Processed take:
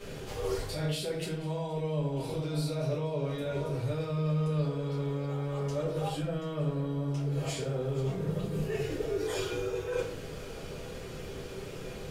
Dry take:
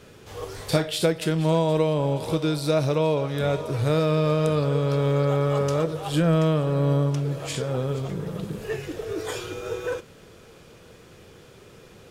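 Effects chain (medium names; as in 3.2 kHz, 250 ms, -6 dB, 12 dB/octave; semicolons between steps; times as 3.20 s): de-hum 49.03 Hz, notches 9; peak limiter -17.5 dBFS, peak gain reduction 9 dB; reverse; compression 8:1, threshold -38 dBFS, peak gain reduction 16.5 dB; reverse; simulated room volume 43 m³, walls mixed, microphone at 1.5 m; trim -2.5 dB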